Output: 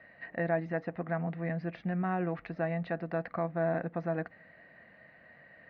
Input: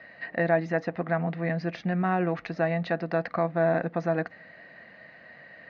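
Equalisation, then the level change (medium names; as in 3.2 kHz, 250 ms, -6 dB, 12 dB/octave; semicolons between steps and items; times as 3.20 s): low-pass 2.9 kHz 12 dB/octave; bass shelf 85 Hz +10.5 dB; -7.0 dB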